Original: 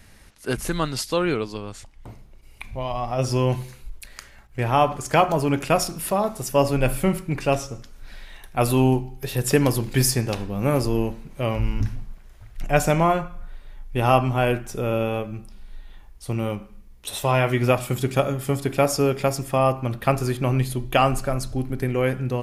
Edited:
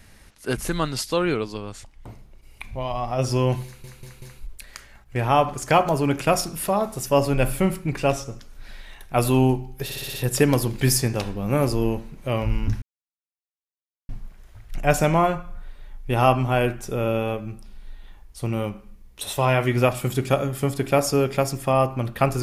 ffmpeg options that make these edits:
-filter_complex "[0:a]asplit=10[s0][s1][s2][s3][s4][s5][s6][s7][s8][s9];[s0]atrim=end=3.842[s10];[s1]atrim=start=3.648:end=3.842[s11];[s2]atrim=start=3.648:end=3.842[s12];[s3]atrim=start=3.648:end=9.332[s13];[s4]atrim=start=9.268:end=9.332[s14];[s5]atrim=start=9.268:end=9.332[s15];[s6]atrim=start=9.268:end=9.332[s16];[s7]atrim=start=9.268:end=9.332[s17];[s8]atrim=start=9.268:end=11.95,asetpts=PTS-STARTPTS,afade=t=out:st=2.678:d=0.004:c=hsin,apad=pad_dur=1.27[s18];[s9]atrim=start=11.95,asetpts=PTS-STARTPTS,afade=t=in:d=0.004:c=hsin[s19];[s10][s11]acrossfade=d=0.004:c1=hsin:c2=hsin[s20];[s20][s12]acrossfade=d=0.004:c1=hsin:c2=hsin[s21];[s21][s13]acrossfade=d=0.004:c1=hsin:c2=hsin[s22];[s22][s14]acrossfade=d=0.004:c1=hsin:c2=hsin[s23];[s23][s15]acrossfade=d=0.004:c1=hsin:c2=hsin[s24];[s24][s16]acrossfade=d=0.004:c1=hsin:c2=hsin[s25];[s25][s17]acrossfade=d=0.004:c1=hsin:c2=hsin[s26];[s18][s19]concat=n=2:v=0:a=1[s27];[s26][s27]acrossfade=d=0.004:c1=hsin:c2=hsin"

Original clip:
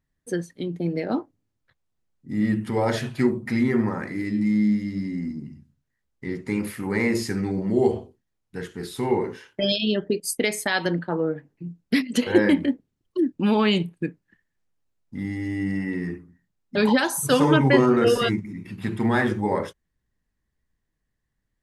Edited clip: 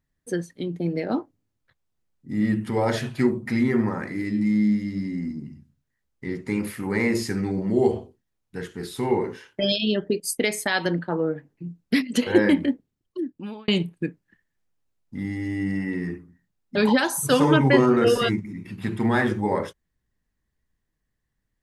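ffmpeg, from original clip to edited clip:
-filter_complex "[0:a]asplit=2[s0][s1];[s0]atrim=end=13.68,asetpts=PTS-STARTPTS,afade=t=out:st=12.68:d=1[s2];[s1]atrim=start=13.68,asetpts=PTS-STARTPTS,afade=t=in:d=0.004:c=hsin[s3];[s2][s3]concat=n=2:v=0:a=1"

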